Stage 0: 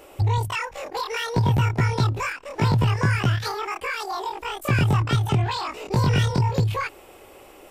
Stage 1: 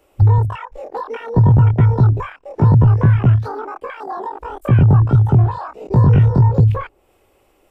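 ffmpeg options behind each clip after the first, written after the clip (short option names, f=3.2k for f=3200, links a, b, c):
-filter_complex "[0:a]afwtdn=0.0447,lowshelf=f=150:g=9,acrossover=split=100|1100[a][b][c];[c]acompressor=threshold=-42dB:ratio=6[d];[a][b][d]amix=inputs=3:normalize=0,volume=4.5dB"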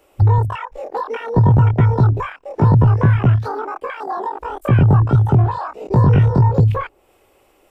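-af "lowshelf=f=230:g=-5.5,volume=3dB"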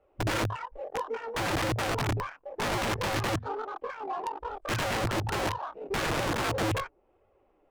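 -af "flanger=delay=1.5:depth=6:regen=-28:speed=1.1:shape=sinusoidal,aeval=exprs='(mod(7.5*val(0)+1,2)-1)/7.5':c=same,adynamicsmooth=sensitivity=3:basefreq=1.5k,volume=-6dB"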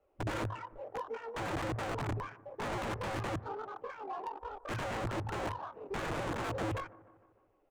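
-filter_complex "[0:a]acrossover=split=100|1500[a][b][c];[b]aecho=1:1:152|304|456|608|760:0.119|0.0666|0.0373|0.0209|0.0117[d];[c]asoftclip=type=tanh:threshold=-34dB[e];[a][d][e]amix=inputs=3:normalize=0,volume=-6.5dB"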